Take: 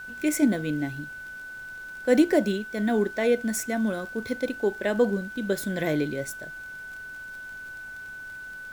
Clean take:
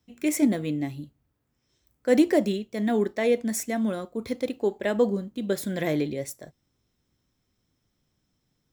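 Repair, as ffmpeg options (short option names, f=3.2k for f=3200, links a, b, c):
-af "adeclick=t=4,bandreject=f=1.5k:w=30,agate=range=-21dB:threshold=-32dB"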